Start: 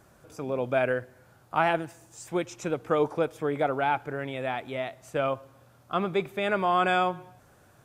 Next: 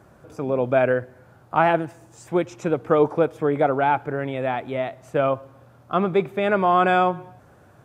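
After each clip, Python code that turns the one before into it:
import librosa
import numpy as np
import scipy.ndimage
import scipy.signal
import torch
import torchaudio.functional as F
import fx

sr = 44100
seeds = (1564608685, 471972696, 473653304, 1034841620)

y = scipy.signal.sosfilt(scipy.signal.butter(2, 52.0, 'highpass', fs=sr, output='sos'), x)
y = fx.high_shelf(y, sr, hz=2400.0, db=-11.5)
y = y * librosa.db_to_amplitude(7.5)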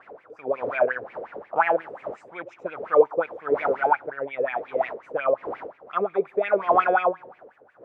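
y = fx.dmg_wind(x, sr, seeds[0], corner_hz=570.0, level_db=-33.0)
y = fx.wah_lfo(y, sr, hz=5.6, low_hz=440.0, high_hz=2400.0, q=7.0)
y = y * librosa.db_to_amplitude(8.5)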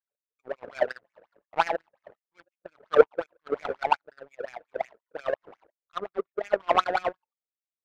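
y = fx.noise_reduce_blind(x, sr, reduce_db=15)
y = fx.power_curve(y, sr, exponent=2.0)
y = y * librosa.db_to_amplitude(3.5)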